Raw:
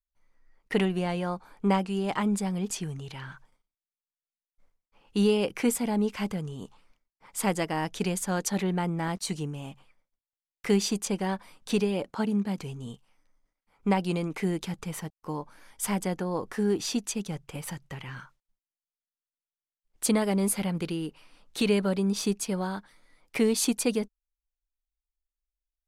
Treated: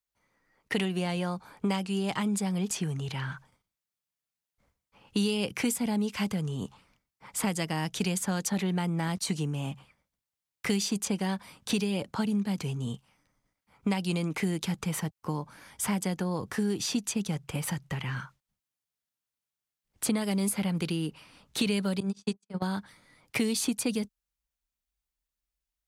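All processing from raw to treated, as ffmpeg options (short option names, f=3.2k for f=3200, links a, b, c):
-filter_complex "[0:a]asettb=1/sr,asplit=3[a][b][c];[a]atrim=end=22.004[d];[b]atrim=start=22:end=22.62,asetpts=PTS-STARTPTS,afade=t=in:d=0.004:c=qsin,afade=t=out:st=0.616:d=0.004:c=qsin,lowpass=f=8.9k:w=0.5412,lowpass=f=8.9k:w=1.3066,bandreject=f=50:t=h:w=6,bandreject=f=100:t=h:w=6,bandreject=f=150:t=h:w=6,bandreject=f=200:t=h:w=6,bandreject=f=250:t=h:w=6,bandreject=f=300:t=h:w=6,bandreject=f=350:t=h:w=6,bandreject=f=400:t=h:w=6,bandreject=f=450:t=h:w=6,bandreject=f=500:t=h:w=6,agate=range=-59dB:threshold=-28dB:ratio=16:release=100:detection=peak[e];[c]atrim=start=22.616[f];[d][e]acrossfade=d=0.004:c1=hsin:c2=qsin[g];[g][f]acrossfade=d=0.004:c1=qsin:c2=hsin,highpass=88,asubboost=boost=2.5:cutoff=200,acrossover=split=230|2700[h][i][j];[h]acompressor=threshold=-39dB:ratio=4[k];[i]acompressor=threshold=-37dB:ratio=4[l];[j]acompressor=threshold=-36dB:ratio=4[m];[k][l][m]amix=inputs=3:normalize=0,volume=5dB"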